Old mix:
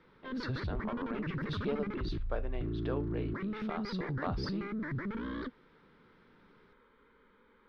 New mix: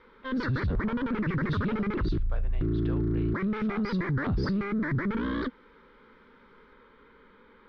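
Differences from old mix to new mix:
speech: add high-pass filter 980 Hz 6 dB per octave
background +8.5 dB

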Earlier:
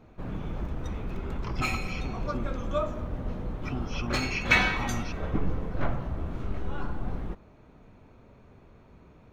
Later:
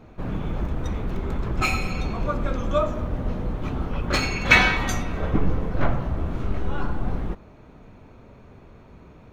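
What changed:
speech: add high-frequency loss of the air 390 metres
background +6.5 dB

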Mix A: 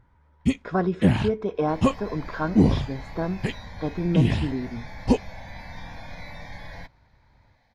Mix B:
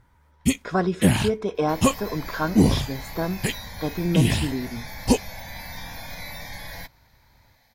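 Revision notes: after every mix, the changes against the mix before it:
master: remove head-to-tape spacing loss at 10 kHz 22 dB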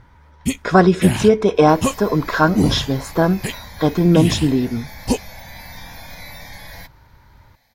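speech +11.0 dB

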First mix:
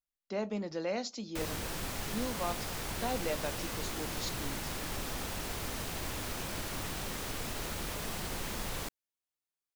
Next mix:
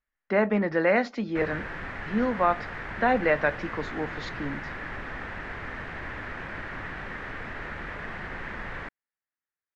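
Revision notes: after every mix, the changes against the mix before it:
speech +11.0 dB
master: add low-pass with resonance 1,800 Hz, resonance Q 3.8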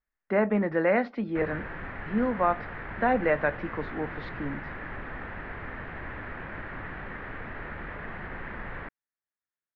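master: add high-frequency loss of the air 360 metres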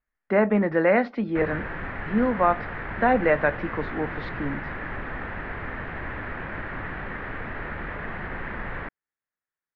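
speech +4.0 dB
background +5.0 dB

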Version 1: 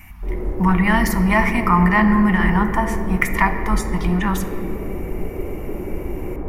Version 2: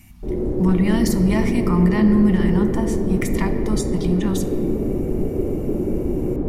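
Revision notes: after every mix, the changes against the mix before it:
speech −8.0 dB
master: add octave-band graphic EQ 125/250/500/1,000/2,000/4,000/8,000 Hz +7/+8/+4/−6/−6/+10/+9 dB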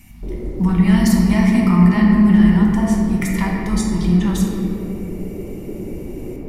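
speech: send +11.0 dB
background: send −9.5 dB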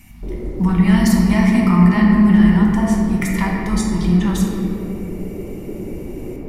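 master: add parametric band 1,300 Hz +2.5 dB 2 octaves

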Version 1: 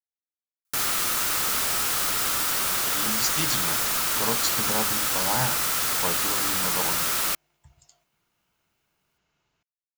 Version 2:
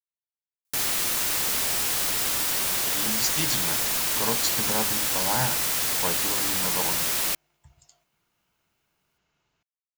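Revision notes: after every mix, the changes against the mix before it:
background: add parametric band 1,300 Hz −9 dB 0.41 octaves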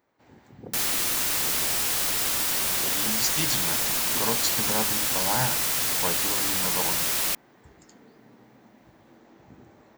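first sound: unmuted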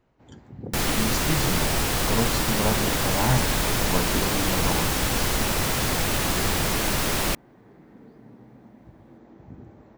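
speech: entry −2.10 s
second sound +6.5 dB
master: add spectral tilt −3 dB per octave

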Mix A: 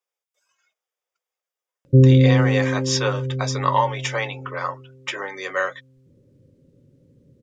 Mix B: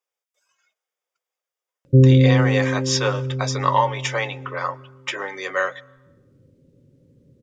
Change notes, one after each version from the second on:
reverb: on, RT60 1.0 s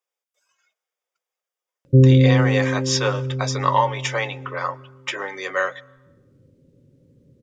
nothing changed

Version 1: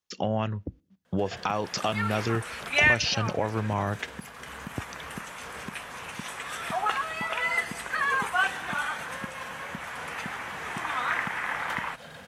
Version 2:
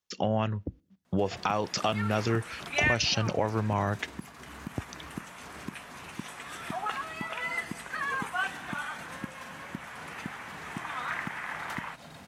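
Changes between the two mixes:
first sound: add thirty-one-band graphic EQ 315 Hz +9 dB, 500 Hz −12 dB, 1,600 Hz −10 dB, 3,150 Hz −7 dB
second sound −6.0 dB

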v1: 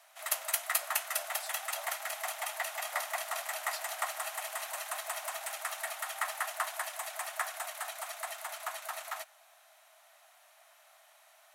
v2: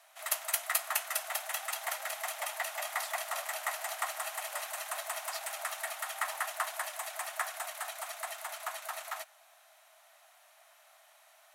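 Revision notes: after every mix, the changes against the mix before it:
speech: entry +1.60 s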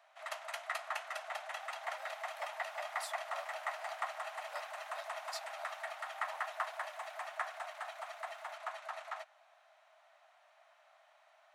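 background: add head-to-tape spacing loss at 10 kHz 24 dB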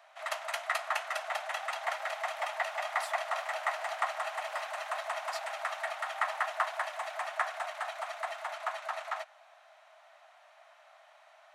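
background +7.0 dB

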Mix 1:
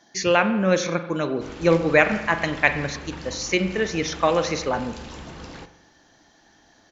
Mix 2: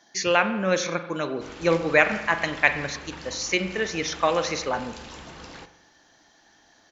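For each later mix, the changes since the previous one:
master: add low-shelf EQ 460 Hz −7 dB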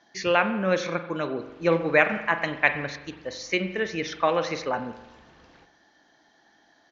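background −12.0 dB
master: add high-frequency loss of the air 160 metres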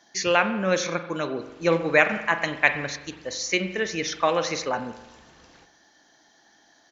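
master: remove high-frequency loss of the air 160 metres

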